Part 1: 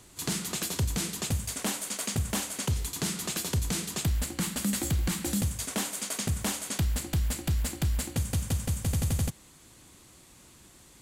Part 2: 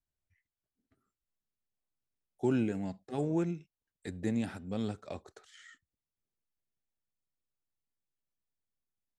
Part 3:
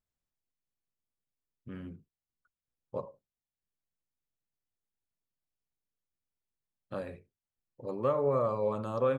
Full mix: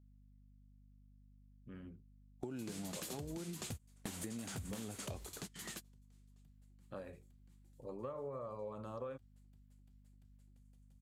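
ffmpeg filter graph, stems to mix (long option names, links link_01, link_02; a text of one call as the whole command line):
ffmpeg -i stem1.wav -i stem2.wav -i stem3.wav -filter_complex "[0:a]flanger=delay=5.6:depth=4.8:regen=73:speed=0.21:shape=sinusoidal,adelay=2400,volume=-1.5dB,afade=type=out:start_time=4.83:duration=0.37:silence=0.398107[link_01];[1:a]agate=range=-33dB:threshold=-56dB:ratio=16:detection=peak,volume=1dB,asplit=2[link_02][link_03];[2:a]volume=-8.5dB[link_04];[link_03]apad=whole_len=591611[link_05];[link_01][link_05]sidechaingate=range=-33dB:threshold=-60dB:ratio=16:detection=peak[link_06];[link_06][link_02]amix=inputs=2:normalize=0,aeval=exprs='val(0)+0.000794*(sin(2*PI*50*n/s)+sin(2*PI*2*50*n/s)/2+sin(2*PI*3*50*n/s)/3+sin(2*PI*4*50*n/s)/4+sin(2*PI*5*50*n/s)/5)':channel_layout=same,acompressor=threshold=-33dB:ratio=6,volume=0dB[link_07];[link_04][link_07]amix=inputs=2:normalize=0,acompressor=threshold=-41dB:ratio=6" out.wav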